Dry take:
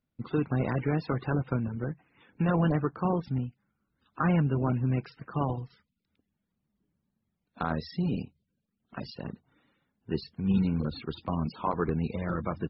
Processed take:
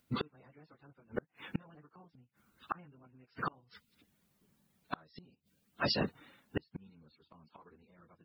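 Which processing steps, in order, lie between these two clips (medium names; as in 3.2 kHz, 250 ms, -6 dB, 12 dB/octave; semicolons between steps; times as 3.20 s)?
plain phase-vocoder stretch 0.65×; tilt EQ +2 dB/octave; inverted gate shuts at -34 dBFS, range -38 dB; trim +13.5 dB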